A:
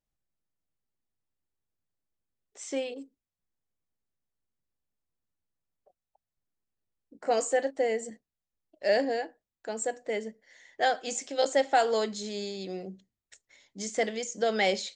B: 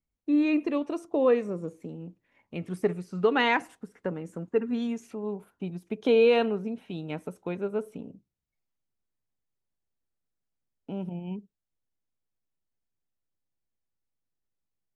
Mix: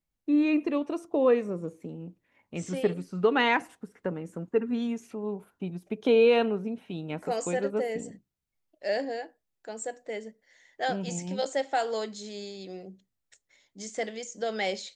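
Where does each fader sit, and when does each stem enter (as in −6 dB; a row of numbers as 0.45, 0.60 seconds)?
−4.0, 0.0 decibels; 0.00, 0.00 seconds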